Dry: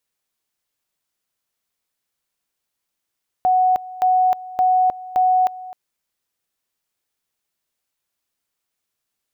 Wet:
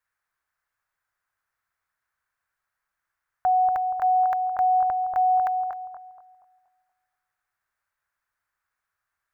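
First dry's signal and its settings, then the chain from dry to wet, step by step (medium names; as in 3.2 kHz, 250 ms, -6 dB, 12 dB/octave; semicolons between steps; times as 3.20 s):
two-level tone 740 Hz -12.5 dBFS, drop 18.5 dB, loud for 0.31 s, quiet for 0.26 s, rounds 4
FFT filter 100 Hz 0 dB, 220 Hz -14 dB, 460 Hz -9 dB, 1.6 kHz +10 dB, 3 kHz -10 dB; peak limiter -16.5 dBFS; on a send: bucket-brigade echo 237 ms, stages 2048, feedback 36%, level -4 dB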